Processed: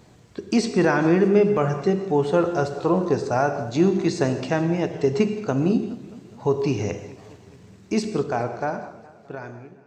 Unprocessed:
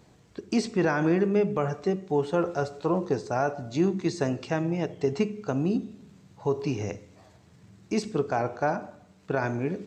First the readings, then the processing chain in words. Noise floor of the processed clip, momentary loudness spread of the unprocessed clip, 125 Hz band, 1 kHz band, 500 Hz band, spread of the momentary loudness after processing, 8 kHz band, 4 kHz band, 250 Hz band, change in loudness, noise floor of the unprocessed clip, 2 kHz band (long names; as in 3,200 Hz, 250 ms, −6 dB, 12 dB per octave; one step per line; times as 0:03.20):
−50 dBFS, 8 LU, +5.0 dB, +4.0 dB, +5.5 dB, 19 LU, +5.5 dB, +5.5 dB, +5.5 dB, +5.5 dB, −57 dBFS, +4.0 dB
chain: fade-out on the ending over 2.20 s
reverb whose tail is shaped and stops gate 200 ms flat, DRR 9.5 dB
feedback echo with a swinging delay time 209 ms, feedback 60%, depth 146 cents, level −19 dB
level +5 dB